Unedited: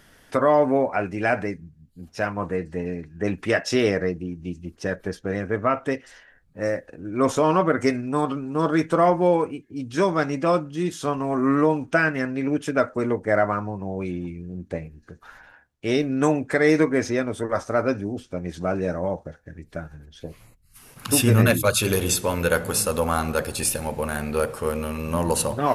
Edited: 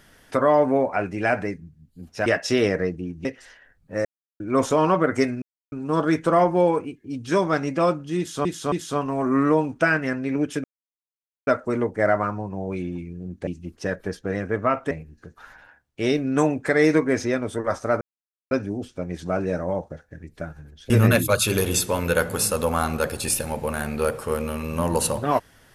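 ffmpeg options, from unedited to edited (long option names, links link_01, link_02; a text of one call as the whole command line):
ffmpeg -i in.wav -filter_complex "[0:a]asplit=14[link_01][link_02][link_03][link_04][link_05][link_06][link_07][link_08][link_09][link_10][link_11][link_12][link_13][link_14];[link_01]atrim=end=2.262[link_15];[link_02]atrim=start=3.478:end=4.472[link_16];[link_03]atrim=start=5.908:end=6.71,asetpts=PTS-STARTPTS,afade=type=out:start_time=0.798:duration=0.004:curve=hsin[link_17];[link_04]atrim=start=6.71:end=7.06,asetpts=PTS-STARTPTS,volume=0[link_18];[link_05]atrim=start=7.06:end=8.08,asetpts=PTS-STARTPTS,afade=type=in:duration=0.004:curve=hsin,afade=type=out:start_time=1.016:duration=0.004:curve=hsin[link_19];[link_06]atrim=start=8.08:end=8.38,asetpts=PTS-STARTPTS,volume=0[link_20];[link_07]atrim=start=8.38:end=11.112,asetpts=PTS-STARTPTS,afade=type=in:duration=0.004:curve=hsin[link_21];[link_08]atrim=start=10.838:end=11.112[link_22];[link_09]atrim=start=10.838:end=12.76,asetpts=PTS-STARTPTS,afade=type=out:start_time=1.918:duration=0.004:curve=hsin,apad=pad_dur=0.83[link_23];[link_10]atrim=start=12.76:end=14.762,asetpts=PTS-STARTPTS,afade=type=in:duration=0.004:curve=hsin[link_24];[link_11]atrim=start=4.468:end=5.912[link_25];[link_12]atrim=start=14.758:end=17.86,asetpts=PTS-STARTPTS,afade=type=out:start_time=3.098:duration=0.004:curve=hsin,apad=pad_dur=0.5[link_26];[link_13]atrim=start=17.86:end=20.252,asetpts=PTS-STARTPTS,afade=type=in:duration=0.004:curve=hsin[link_27];[link_14]atrim=start=21.248[link_28];[link_15][link_16]acrossfade=duration=0.004:curve1=hsin:curve2=hsin[link_29];[link_17][link_18][link_19][link_20][link_21]concat=n=5:v=0:a=1[link_30];[link_29][link_30]acrossfade=duration=0.004:curve1=hsin:curve2=hsin[link_31];[link_31][link_22]acrossfade=duration=0.004:curve1=hsin:curve2=hsin[link_32];[link_23][link_24]concat=n=2:v=0:a=1[link_33];[link_32][link_33]acrossfade=duration=0.004:curve1=hsin:curve2=hsin[link_34];[link_34][link_25]acrossfade=duration=0.004:curve1=hsin:curve2=hsin[link_35];[link_26][link_27]concat=n=2:v=0:a=1[link_36];[link_35][link_36]acrossfade=duration=0.004:curve1=hsin:curve2=hsin[link_37];[link_37][link_28]acrossfade=duration=0.004:curve1=hsin:curve2=hsin" out.wav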